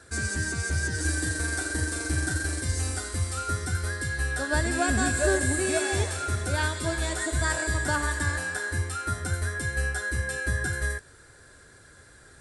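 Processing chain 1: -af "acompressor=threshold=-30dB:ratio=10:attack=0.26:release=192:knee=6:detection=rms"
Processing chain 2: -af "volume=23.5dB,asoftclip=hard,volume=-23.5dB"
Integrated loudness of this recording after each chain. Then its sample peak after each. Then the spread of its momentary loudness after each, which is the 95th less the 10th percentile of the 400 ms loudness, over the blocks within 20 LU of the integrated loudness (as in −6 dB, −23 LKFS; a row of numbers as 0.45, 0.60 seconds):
−37.0, −29.0 LKFS; −26.5, −23.5 dBFS; 4, 4 LU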